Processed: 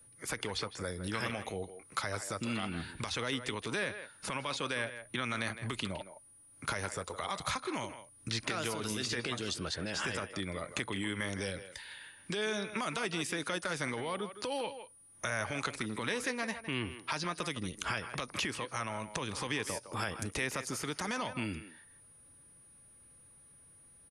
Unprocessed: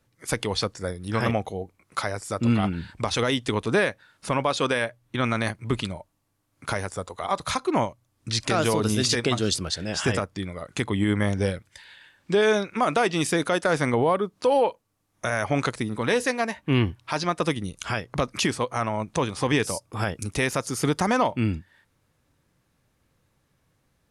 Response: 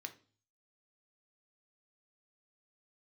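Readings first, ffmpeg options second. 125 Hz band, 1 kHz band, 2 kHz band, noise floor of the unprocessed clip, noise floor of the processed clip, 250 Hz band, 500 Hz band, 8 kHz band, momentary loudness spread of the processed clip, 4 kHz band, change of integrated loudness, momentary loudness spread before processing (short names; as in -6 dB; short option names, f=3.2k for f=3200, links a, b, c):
-14.0 dB, -11.5 dB, -7.5 dB, -71 dBFS, -60 dBFS, -13.0 dB, -14.0 dB, -7.5 dB, 6 LU, -7.5 dB, -11.0 dB, 9 LU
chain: -filter_complex "[0:a]bandreject=f=720:w=18,acrossover=split=220|2400[a][b][c];[a]acompressor=threshold=-39dB:ratio=4[d];[b]acompressor=threshold=-31dB:ratio=4[e];[c]acompressor=threshold=-40dB:ratio=4[f];[d][e][f]amix=inputs=3:normalize=0,aeval=exprs='val(0)+0.00141*sin(2*PI*9600*n/s)':c=same,acrossover=split=1300[g][h];[g]alimiter=level_in=6dB:limit=-24dB:level=0:latency=1:release=168,volume=-6dB[i];[i][h]amix=inputs=2:normalize=0,asplit=2[j][k];[k]adelay=160,highpass=300,lowpass=3.4k,asoftclip=type=hard:threshold=-25.5dB,volume=-10dB[l];[j][l]amix=inputs=2:normalize=0"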